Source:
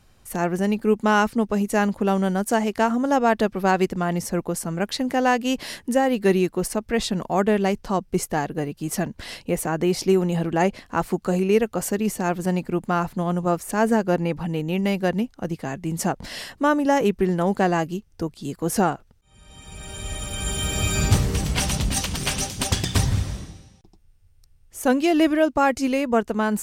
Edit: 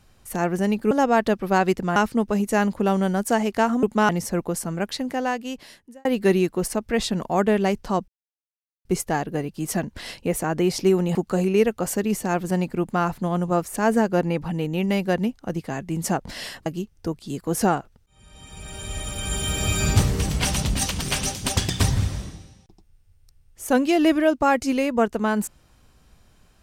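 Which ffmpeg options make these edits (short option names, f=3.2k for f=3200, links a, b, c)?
-filter_complex "[0:a]asplit=9[a][b][c][d][e][f][g][h][i];[a]atrim=end=0.912[j];[b]atrim=start=3.038:end=4.092[k];[c]atrim=start=1.168:end=3.042[l];[d]atrim=start=0.908:end=1.172[m];[e]atrim=start=4.088:end=6.05,asetpts=PTS-STARTPTS,afade=t=out:st=0.512:d=1.45[n];[f]atrim=start=6.05:end=8.08,asetpts=PTS-STARTPTS,afade=t=in:d=0.004:c=hsin,afade=t=out:st=2.026:d=0.004:c=hsin,apad=pad_dur=0.77[o];[g]atrim=start=8.08:end=10.382,asetpts=PTS-STARTPTS,afade=t=in:d=0.004:c=hsin[p];[h]atrim=start=11.098:end=16.612[q];[i]atrim=start=17.808[r];[j][k]acrossfade=d=0.004:c1=hsin:c2=hsin[s];[s][l]acrossfade=d=0.004:c1=hsin:c2=hsin[t];[t][m]acrossfade=d=0.004:c1=hsin:c2=hsin[u];[n][o][p]concat=n=3:v=0:a=1[v];[u][v]acrossfade=d=0.004:c1=hsin:c2=hsin[w];[w][q]acrossfade=d=0.004:c1=hsin:c2=hsin[x];[x][r]acrossfade=d=0.004:c1=hsin:c2=hsin"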